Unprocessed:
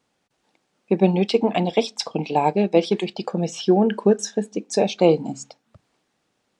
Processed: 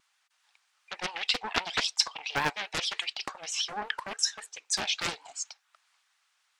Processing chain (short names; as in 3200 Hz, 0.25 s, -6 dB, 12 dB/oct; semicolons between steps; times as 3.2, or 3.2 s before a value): HPF 1100 Hz 24 dB/oct; vibrato 7.5 Hz 95 cents; Doppler distortion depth 0.68 ms; gain +2.5 dB